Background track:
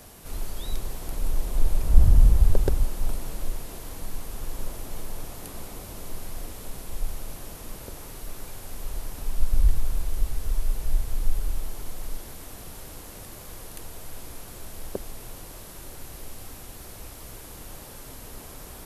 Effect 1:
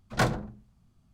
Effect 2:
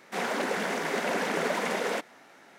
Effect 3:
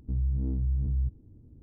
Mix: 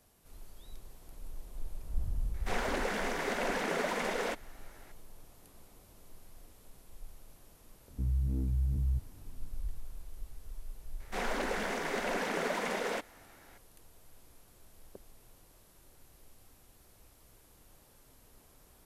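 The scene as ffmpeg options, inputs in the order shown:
-filter_complex "[2:a]asplit=2[a][b];[0:a]volume=-19dB[c];[a]atrim=end=2.58,asetpts=PTS-STARTPTS,volume=-4.5dB,afade=t=in:d=0.004:c=hsin,afade=t=out:st=2.576:d=0.004:c=hsin,adelay=2340[d];[3:a]atrim=end=1.62,asetpts=PTS-STARTPTS,volume=-3dB,afade=t=in:d=0.004:c=hsin,afade=t=out:st=1.616:d=0.004:c=hsin,adelay=7900[e];[b]atrim=end=2.58,asetpts=PTS-STARTPTS,volume=-5dB,afade=t=in:d=0.004:c=hsin,afade=t=out:st=2.576:d=0.004:c=hsin,adelay=11000[f];[c][d][e][f]amix=inputs=4:normalize=0"

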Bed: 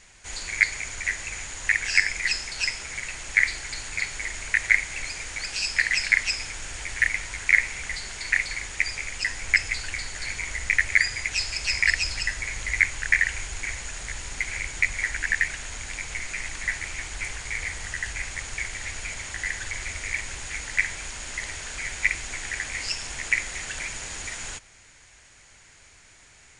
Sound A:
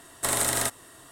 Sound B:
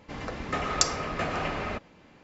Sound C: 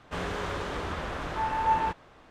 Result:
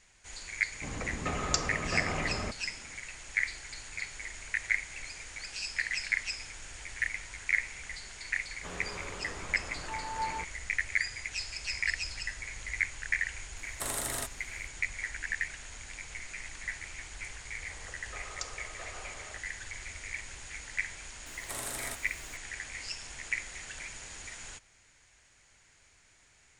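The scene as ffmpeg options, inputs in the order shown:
-filter_complex "[2:a]asplit=2[a][b];[1:a]asplit=2[c][d];[0:a]volume=-10dB[e];[a]lowshelf=f=210:g=7.5[f];[b]highpass=f=390:w=0.5412,highpass=f=390:w=1.3066[g];[d]aeval=exprs='val(0)+0.5*0.0211*sgn(val(0))':c=same[h];[f]atrim=end=2.23,asetpts=PTS-STARTPTS,volume=-5.5dB,afade=t=in:d=0.004:c=hsin,afade=t=out:st=2.226:d=0.004:c=hsin,adelay=730[i];[3:a]atrim=end=2.3,asetpts=PTS-STARTPTS,volume=-10dB,afade=t=in:d=0.004:c=hsin,afade=t=out:st=2.296:d=0.004:c=hsin,adelay=8520[j];[c]atrim=end=1.11,asetpts=PTS-STARTPTS,volume=-9.5dB,afade=t=in:d=0.004:c=hsin,afade=t=out:st=1.106:d=0.004:c=hsin,adelay=13570[k];[g]atrim=end=2.23,asetpts=PTS-STARTPTS,volume=-16dB,afade=t=in:d=0.004:c=hsin,afade=t=out:st=2.226:d=0.004:c=hsin,adelay=17600[l];[h]atrim=end=1.11,asetpts=PTS-STARTPTS,volume=-14.5dB,afade=t=in:d=0.004:c=hsin,afade=t=out:st=1.106:d=0.004:c=hsin,adelay=21260[m];[e][i][j][k][l][m]amix=inputs=6:normalize=0"

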